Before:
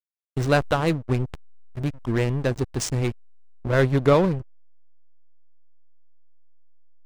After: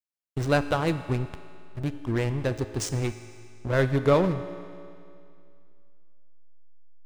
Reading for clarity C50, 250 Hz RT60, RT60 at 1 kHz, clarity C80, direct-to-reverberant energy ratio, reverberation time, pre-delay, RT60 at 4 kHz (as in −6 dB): 11.5 dB, 2.4 s, 2.4 s, 12.0 dB, 10.0 dB, 2.4 s, 3 ms, 2.3 s